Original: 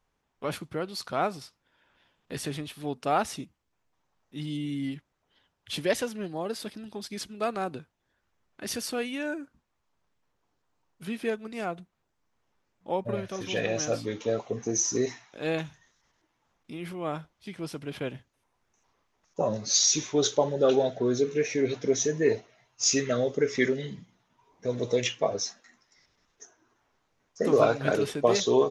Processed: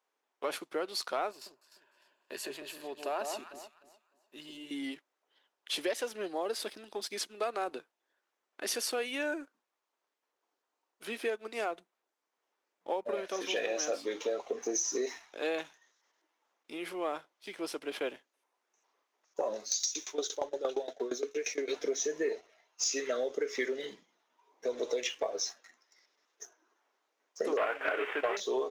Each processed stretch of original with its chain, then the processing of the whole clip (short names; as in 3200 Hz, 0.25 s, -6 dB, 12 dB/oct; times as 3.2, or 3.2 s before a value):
1.31–4.71 ripple EQ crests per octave 1.4, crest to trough 8 dB + compressor 1.5:1, threshold -48 dBFS + echo with dull and thin repeats by turns 0.151 s, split 1100 Hz, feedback 54%, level -5 dB
19.6–21.68 high shelf 6200 Hz +12 dB + dB-ramp tremolo decaying 8.6 Hz, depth 20 dB
27.57–28.37 CVSD 16 kbps + brick-wall FIR high-pass 180 Hz + bell 1800 Hz +15 dB 2.8 oct
whole clip: HPF 340 Hz 24 dB/oct; compressor 6:1, threshold -31 dBFS; sample leveller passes 1; gain -2 dB